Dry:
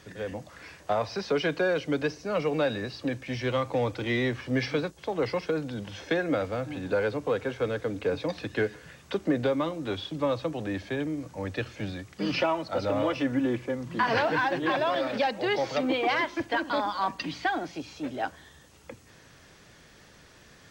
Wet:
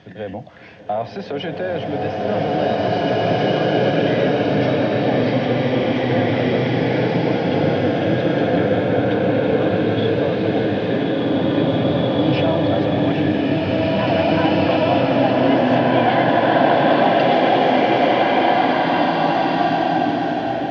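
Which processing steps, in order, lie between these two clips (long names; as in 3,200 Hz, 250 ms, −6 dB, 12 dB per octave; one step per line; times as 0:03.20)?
bass and treble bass +9 dB, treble −12 dB
brickwall limiter −23 dBFS, peak gain reduction 11 dB
loudspeaker in its box 140–5,900 Hz, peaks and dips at 700 Hz +10 dB, 1,200 Hz −6 dB, 3,200 Hz +6 dB
slow-attack reverb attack 2,380 ms, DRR −9 dB
level +4 dB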